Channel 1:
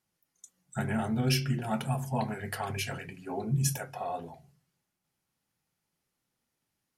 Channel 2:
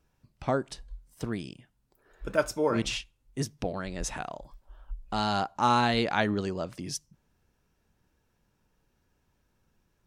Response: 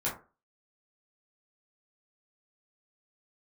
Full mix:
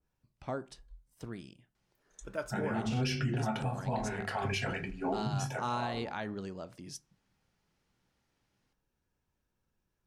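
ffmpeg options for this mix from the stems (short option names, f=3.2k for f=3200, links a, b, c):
-filter_complex "[0:a]lowpass=5.5k,adelay=1750,volume=3dB,asplit=2[a][b];[b]volume=-13.5dB[c];[1:a]adynamicequalizer=threshold=0.0141:dfrequency=2000:dqfactor=0.7:tfrequency=2000:tqfactor=0.7:attack=5:release=100:ratio=0.375:range=1.5:mode=cutabove:tftype=highshelf,volume=-11dB,asplit=3[d][e][f];[e]volume=-19dB[g];[f]apad=whole_len=384960[h];[a][h]sidechaincompress=threshold=-48dB:ratio=8:attack=8.9:release=252[i];[2:a]atrim=start_sample=2205[j];[c][g]amix=inputs=2:normalize=0[k];[k][j]afir=irnorm=-1:irlink=0[l];[i][d][l]amix=inputs=3:normalize=0,alimiter=limit=-23.5dB:level=0:latency=1:release=87"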